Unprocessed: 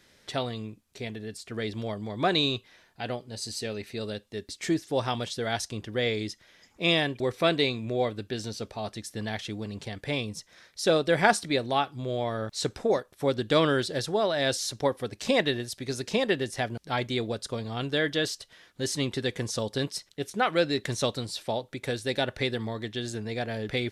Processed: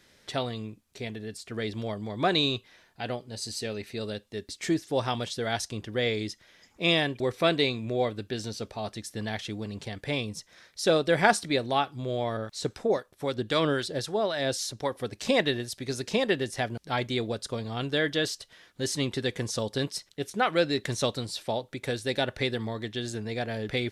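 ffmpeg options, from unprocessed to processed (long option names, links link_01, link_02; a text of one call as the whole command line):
ffmpeg -i in.wav -filter_complex "[0:a]asettb=1/sr,asplit=3[link_01][link_02][link_03];[link_01]atrim=end=12.374[link_04];[link_02]atrim=start=12.37:end=14.96,asetpts=PTS-STARTPTS,afade=type=in:duration=0.004:curve=qsin,afade=type=out:start_time=2.586:duration=0.004:curve=qsin,acrossover=split=900[link_05][link_06];[link_05]aeval=exprs='val(0)*(1-0.5/2+0.5/2*cos(2*PI*3.8*n/s))':channel_layout=same[link_07];[link_06]aeval=exprs='val(0)*(1-0.5/2-0.5/2*cos(2*PI*3.8*n/s))':channel_layout=same[link_08];[link_07][link_08]amix=inputs=2:normalize=0[link_09];[link_03]atrim=start=14.956[link_10];[link_04][link_09]acrossfade=duration=0.004:curve1=hsin:curve2=qsin[link_11];[link_11][link_10]acrossfade=duration=0.004:curve1=qsin:curve2=hsin" out.wav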